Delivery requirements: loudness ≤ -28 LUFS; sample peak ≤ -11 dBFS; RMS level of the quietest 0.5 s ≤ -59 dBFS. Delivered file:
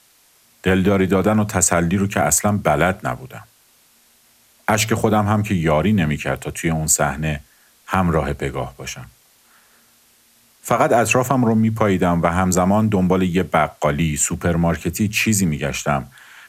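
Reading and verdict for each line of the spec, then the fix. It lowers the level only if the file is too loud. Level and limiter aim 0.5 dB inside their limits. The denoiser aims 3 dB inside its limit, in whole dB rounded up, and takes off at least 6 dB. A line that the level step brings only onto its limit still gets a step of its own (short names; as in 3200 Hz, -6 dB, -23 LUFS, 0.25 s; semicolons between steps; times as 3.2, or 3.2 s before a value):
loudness -18.5 LUFS: fail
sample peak -2.0 dBFS: fail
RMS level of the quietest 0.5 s -55 dBFS: fail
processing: gain -10 dB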